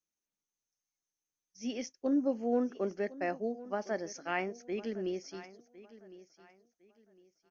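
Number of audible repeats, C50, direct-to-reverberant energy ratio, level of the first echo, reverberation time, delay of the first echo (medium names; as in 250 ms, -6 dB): 2, no reverb, no reverb, -17.5 dB, no reverb, 1057 ms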